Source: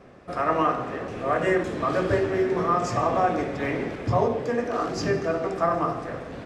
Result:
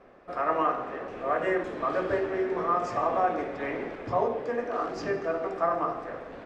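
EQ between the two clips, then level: LPF 1500 Hz 6 dB/oct; bell 110 Hz -15 dB 2.5 oct; 0.0 dB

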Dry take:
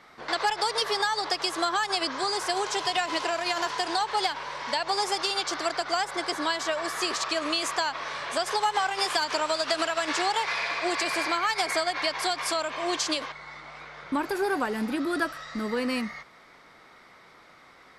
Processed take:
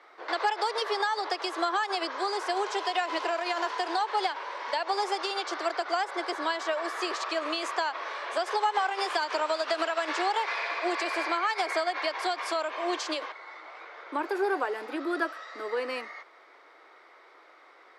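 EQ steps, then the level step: steep high-pass 320 Hz 48 dB/oct; LPF 2200 Hz 6 dB/oct; 0.0 dB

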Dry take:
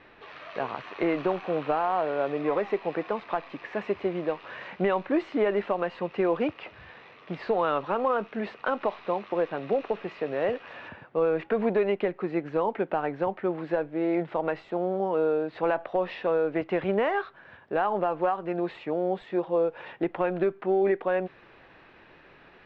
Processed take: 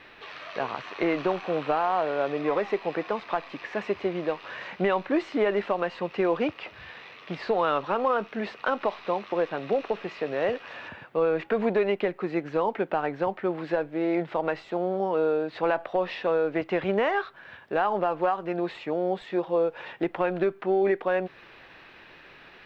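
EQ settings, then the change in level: high shelf 2000 Hz +11.5 dB; dynamic EQ 2900 Hz, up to -4 dB, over -42 dBFS, Q 0.72; 0.0 dB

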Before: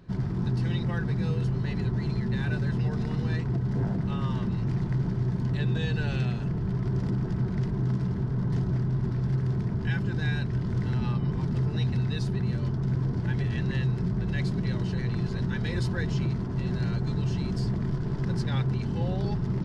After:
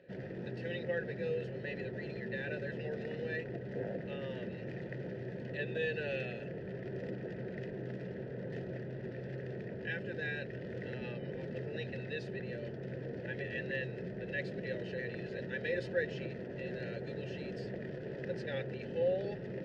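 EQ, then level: vowel filter e; +9.5 dB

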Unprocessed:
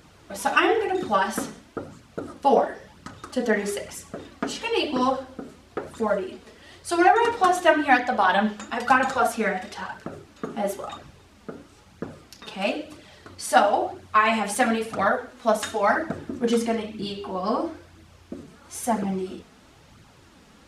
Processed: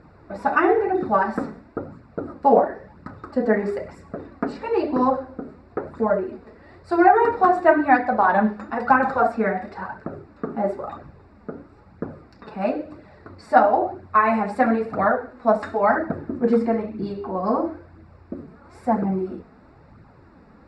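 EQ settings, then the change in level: running mean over 14 samples; air absorption 61 m; +4.0 dB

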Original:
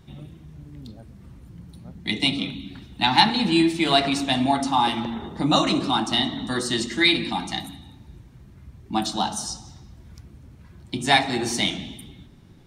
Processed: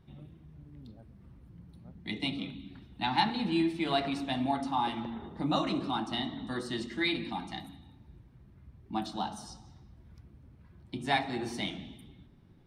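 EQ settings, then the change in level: high shelf 3100 Hz -8 dB; bell 7000 Hz -6.5 dB 0.52 oct; -9.0 dB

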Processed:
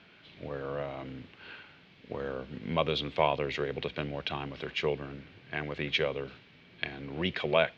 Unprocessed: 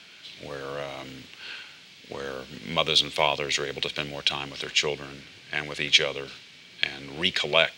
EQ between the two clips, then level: tape spacing loss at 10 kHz 41 dB; low shelf 78 Hz +6 dB; +1.0 dB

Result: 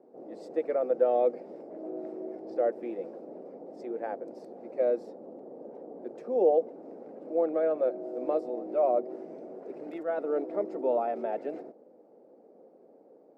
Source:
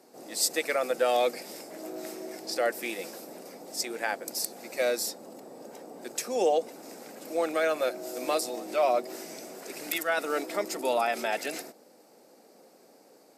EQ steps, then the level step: band-pass 490 Hz, Q 1.3; tilt -4 dB/oct; -1.5 dB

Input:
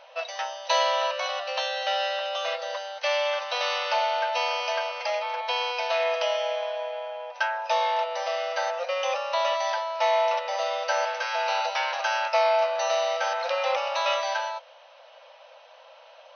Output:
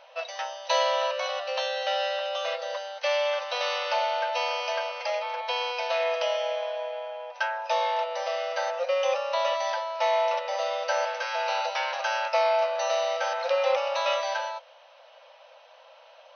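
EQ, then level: dynamic EQ 540 Hz, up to +7 dB, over -46 dBFS, Q 8; -2.0 dB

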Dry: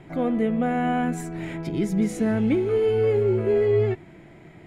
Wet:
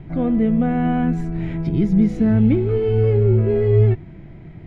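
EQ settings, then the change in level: air absorption 280 m; tone controls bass +9 dB, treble +11 dB; low shelf 100 Hz +9.5 dB; 0.0 dB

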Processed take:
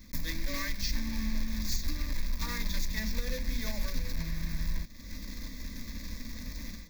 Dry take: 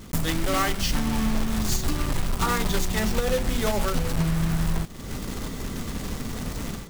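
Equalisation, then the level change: fixed phaser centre 320 Hz, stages 4; fixed phaser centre 2000 Hz, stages 8; -4.0 dB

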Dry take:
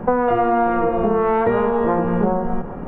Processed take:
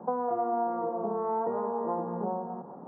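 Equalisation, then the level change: HPF 160 Hz 24 dB/oct; ladder low-pass 1100 Hz, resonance 45%; -6.5 dB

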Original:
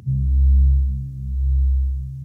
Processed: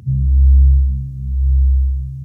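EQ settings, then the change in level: low shelf 160 Hz +6 dB; 0.0 dB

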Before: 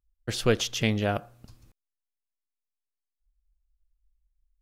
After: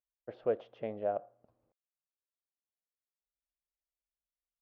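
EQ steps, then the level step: band-pass 600 Hz, Q 3.2; air absorption 340 m; 0.0 dB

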